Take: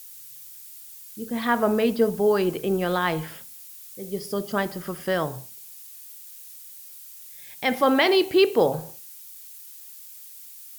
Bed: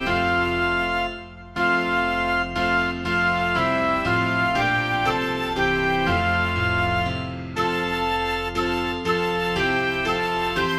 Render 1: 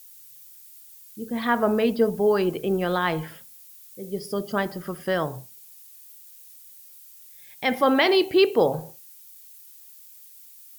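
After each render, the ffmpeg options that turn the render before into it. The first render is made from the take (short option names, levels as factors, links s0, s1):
-af "afftdn=nr=6:nf=-44"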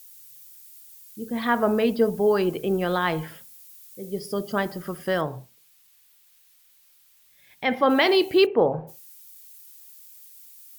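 -filter_complex "[0:a]asettb=1/sr,asplit=3[s0][s1][s2];[s0]atrim=end=5.214[s3];[s1]atrim=start=5.21:end=7.9,asetpts=PTS-STARTPTS,afade=t=in:d=0.004:c=qsin,afade=t=out:st=2.686:d=0.004:c=qsin,acrossover=split=4100[s4][s5];[s5]acompressor=threshold=0.00158:ratio=4:attack=1:release=60[s6];[s4][s6]amix=inputs=2:normalize=0[s7];[s2]atrim=start=7.896[s8];[s3][s7]acrossfade=d=0.004:c1=hsin:c2=qsin[s9];[s9][s8]acrossfade=d=0.004:c1=qsin:c2=hsin,asplit=3[s10][s11][s12];[s10]afade=t=out:st=8.45:d=0.02[s13];[s11]lowpass=f=2200:w=0.5412,lowpass=f=2200:w=1.3066,afade=t=in:st=8.45:d=0.02,afade=t=out:st=8.87:d=0.02[s14];[s12]afade=t=in:st=8.87:d=0.02[s15];[s13][s14][s15]amix=inputs=3:normalize=0"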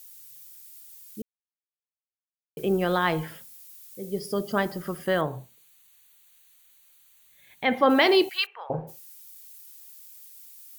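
-filter_complex "[0:a]asettb=1/sr,asplit=3[s0][s1][s2];[s0]atrim=end=5.044[s3];[s1]atrim=start=5.04:end=7.78,asetpts=PTS-STARTPTS,afade=t=in:d=0.004:c=qsin,afade=t=out:st=2.736:d=0.004:c=qsin,asuperstop=centerf=5200:order=4:qfactor=4.7[s4];[s2]atrim=start=7.776[s5];[s3][s4]acrossfade=d=0.004:c1=hsin:c2=qsin[s6];[s6][s5]acrossfade=d=0.004:c1=qsin:c2=hsin,asettb=1/sr,asplit=3[s7][s8][s9];[s7]atrim=end=8.294[s10];[s8]atrim=start=8.29:end=8.7,asetpts=PTS-STARTPTS,afade=t=in:d=0.004:c=qsin,afade=t=out:st=0.406:d=0.004:c=qsin,highpass=f=1200:w=0.5412,highpass=f=1200:w=1.3066[s11];[s9]atrim=start=8.696[s12];[s10][s11]acrossfade=d=0.004:c1=hsin:c2=qsin[s13];[s13][s12]acrossfade=d=0.004:c1=qsin:c2=hsin,asplit=3[s14][s15][s16];[s14]atrim=end=1.22,asetpts=PTS-STARTPTS,afade=t=out:st=1.216:d=0.004:c=hsin[s17];[s15]atrim=start=1.22:end=2.57,asetpts=PTS-STARTPTS,volume=0[s18];[s16]atrim=start=2.57,asetpts=PTS-STARTPTS,afade=t=in:d=0.004:c=hsin[s19];[s17][s18][s19]concat=n=3:v=0:a=1"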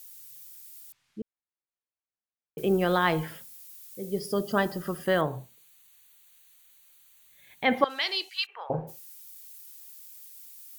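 -filter_complex "[0:a]asettb=1/sr,asplit=3[s0][s1][s2];[s0]atrim=end=0.924[s3];[s1]atrim=start=0.92:end=2.58,asetpts=PTS-STARTPTS,afade=t=in:d=0.004:c=qsin,afade=t=out:st=1.656:d=0.004:c=qsin,lowpass=2300[s4];[s2]atrim=start=2.576[s5];[s3][s4]acrossfade=d=0.004:c1=hsin:c2=qsin[s6];[s6][s5]acrossfade=d=0.004:c1=qsin:c2=hsin,asettb=1/sr,asplit=3[s7][s8][s9];[s7]atrim=end=4.274[s10];[s8]atrim=start=4.27:end=5.05,asetpts=PTS-STARTPTS,afade=t=in:d=0.004:c=qsin,afade=t=out:st=0.776:d=0.004:c=qsin,asuperstop=centerf=2200:order=8:qfactor=7.6[s11];[s9]atrim=start=5.046[s12];[s10][s11]acrossfade=d=0.004:c1=hsin:c2=qsin[s13];[s13][s12]acrossfade=d=0.004:c1=qsin:c2=hsin,asettb=1/sr,asplit=3[s14][s15][s16];[s14]atrim=end=7.844[s17];[s15]atrim=start=7.84:end=8.49,asetpts=PTS-STARTPTS,afade=t=in:d=0.004:c=qsin,afade=t=out:st=0.646:d=0.004:c=qsin,bandpass=f=5000:t=q:w=1.1[s18];[s16]atrim=start=8.486[s19];[s17][s18]acrossfade=d=0.004:c1=hsin:c2=qsin[s20];[s20][s19]acrossfade=d=0.004:c1=qsin:c2=hsin"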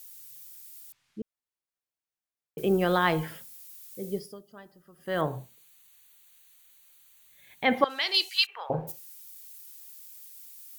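-filter_complex "[0:a]asettb=1/sr,asplit=3[s0][s1][s2];[s0]atrim=end=8.144[s3];[s1]atrim=start=8.14:end=8.92,asetpts=PTS-STARTPTS,afade=t=in:d=0.004:c=qsin,afade=t=out:st=0.776:d=0.004:c=qsin,highshelf=f=3000:g=11[s4];[s2]atrim=start=8.916[s5];[s3][s4]acrossfade=d=0.004:c1=hsin:c2=qsin[s6];[s6][s5]acrossfade=d=0.004:c1=qsin:c2=hsin,asplit=3[s7][s8][s9];[s7]atrim=end=4.45,asetpts=PTS-STARTPTS,afade=t=out:st=4.11:d=0.34:c=qua:silence=0.0668344[s10];[s8]atrim=start=4.45:end=4.9,asetpts=PTS-STARTPTS,volume=0.0668[s11];[s9]atrim=start=4.9,asetpts=PTS-STARTPTS,afade=t=in:d=0.34:c=qua:silence=0.0668344[s12];[s10][s11][s12]concat=n=3:v=0:a=1"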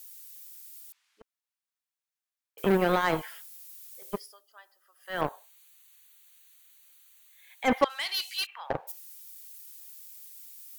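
-filter_complex "[0:a]acrossover=split=730|950[s0][s1][s2];[s0]acrusher=bits=3:mix=0:aa=0.5[s3];[s2]asoftclip=type=tanh:threshold=0.0473[s4];[s3][s1][s4]amix=inputs=3:normalize=0"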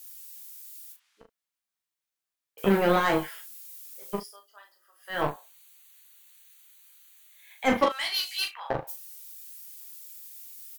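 -filter_complex "[0:a]asplit=2[s0][s1];[s1]adelay=34,volume=0.251[s2];[s0][s2]amix=inputs=2:normalize=0,asplit=2[s3][s4];[s4]aecho=0:1:15|40:0.596|0.531[s5];[s3][s5]amix=inputs=2:normalize=0"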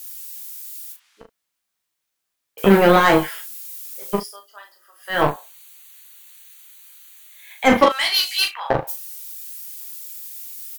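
-af "volume=3.16,alimiter=limit=0.794:level=0:latency=1"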